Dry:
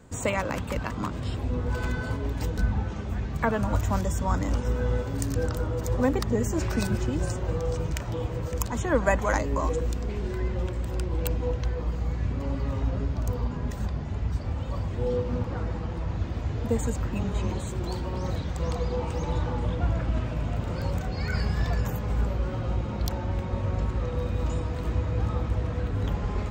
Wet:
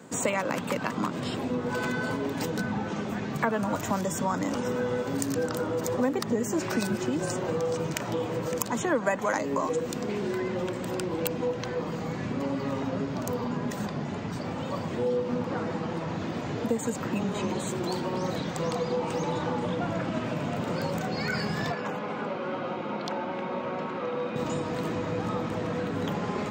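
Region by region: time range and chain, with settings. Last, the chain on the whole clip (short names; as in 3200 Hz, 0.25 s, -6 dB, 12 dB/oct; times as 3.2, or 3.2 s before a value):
21.72–24.36 BPF 170–2400 Hz + tilt +2 dB/oct + notch 1800 Hz, Q 9.5
whole clip: HPF 160 Hz 24 dB/oct; compressor 2.5:1, threshold -33 dBFS; gain +6.5 dB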